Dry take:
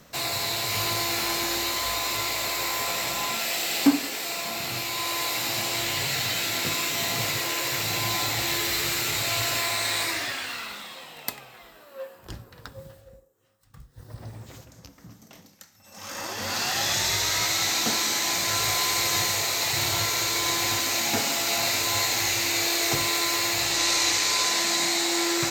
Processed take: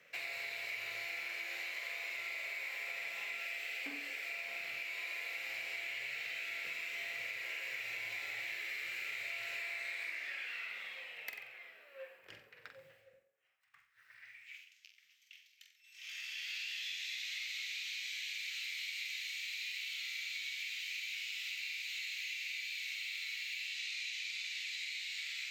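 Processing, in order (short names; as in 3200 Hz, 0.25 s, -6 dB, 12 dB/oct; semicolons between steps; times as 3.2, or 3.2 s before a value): EQ curve 120 Hz 0 dB, 270 Hz -15 dB, 1000 Hz -20 dB, 2300 Hz +3 dB, 3800 Hz -17 dB, 8900 Hz -28 dB; high-pass sweep 500 Hz -> 3300 Hz, 13.17–14.75; high shelf 4800 Hz +10.5 dB; flutter echo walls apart 7.8 m, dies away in 0.39 s; compressor 6:1, threshold -37 dBFS, peak gain reduction 12 dB; gain -2.5 dB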